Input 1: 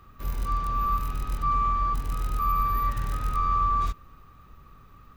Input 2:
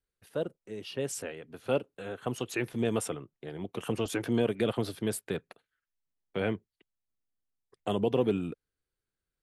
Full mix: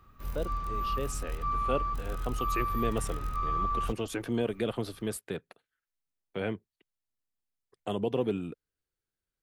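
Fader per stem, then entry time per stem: −6.5, −2.5 decibels; 0.00, 0.00 seconds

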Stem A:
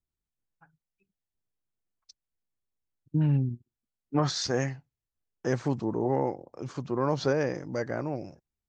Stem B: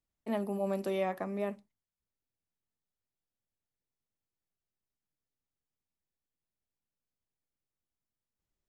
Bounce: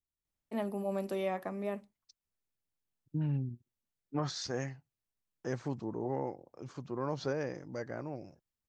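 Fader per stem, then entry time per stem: −8.5, −2.0 decibels; 0.00, 0.25 seconds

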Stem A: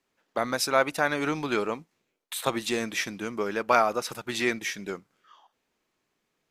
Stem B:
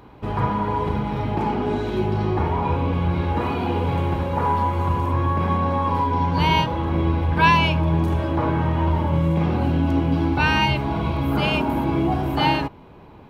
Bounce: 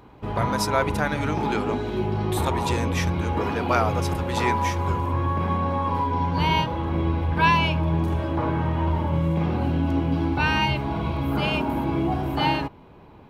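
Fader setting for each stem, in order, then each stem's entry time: −1.0, −3.0 decibels; 0.00, 0.00 seconds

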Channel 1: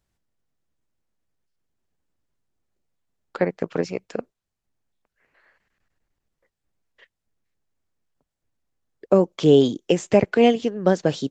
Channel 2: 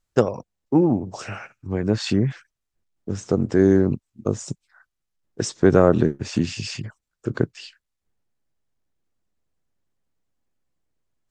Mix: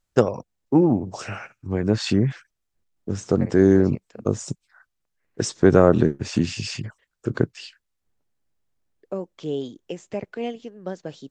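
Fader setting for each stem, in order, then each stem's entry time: −13.5, +0.5 decibels; 0.00, 0.00 seconds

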